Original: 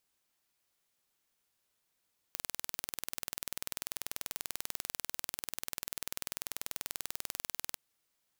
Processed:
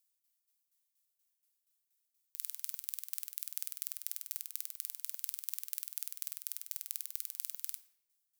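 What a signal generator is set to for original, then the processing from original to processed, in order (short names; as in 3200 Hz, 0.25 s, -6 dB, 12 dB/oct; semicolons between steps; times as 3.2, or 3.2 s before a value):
pulse train 20.4/s, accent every 0, -9 dBFS 5.44 s
pre-emphasis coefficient 0.97; tremolo saw down 4.2 Hz, depth 75%; shoebox room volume 230 m³, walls mixed, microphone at 0.33 m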